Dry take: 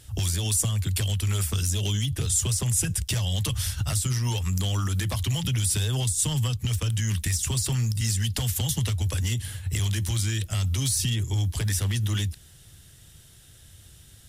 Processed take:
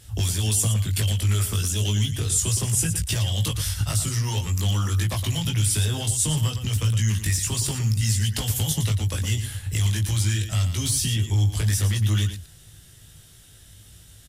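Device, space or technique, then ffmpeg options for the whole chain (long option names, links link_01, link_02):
slapback doubling: -filter_complex "[0:a]asplit=3[link_01][link_02][link_03];[link_02]adelay=19,volume=-3dB[link_04];[link_03]adelay=115,volume=-8.5dB[link_05];[link_01][link_04][link_05]amix=inputs=3:normalize=0"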